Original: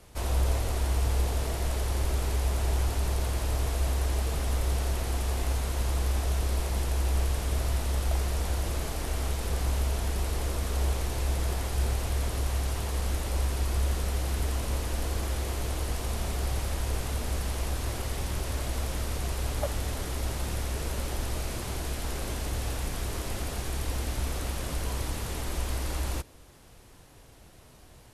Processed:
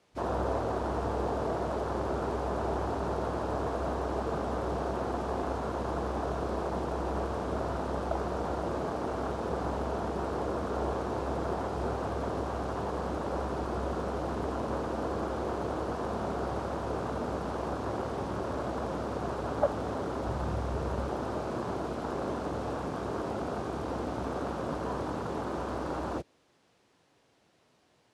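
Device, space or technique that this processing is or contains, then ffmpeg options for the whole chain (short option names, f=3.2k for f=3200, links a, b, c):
over-cleaned archive recording: -filter_complex "[0:a]highpass=190,lowpass=5.8k,afwtdn=0.0112,asplit=3[a][b][c];[a]afade=t=out:st=20.26:d=0.02[d];[b]asubboost=boost=3:cutoff=130,afade=t=in:st=20.26:d=0.02,afade=t=out:st=21.08:d=0.02[e];[c]afade=t=in:st=21.08:d=0.02[f];[d][e][f]amix=inputs=3:normalize=0,volume=6.5dB"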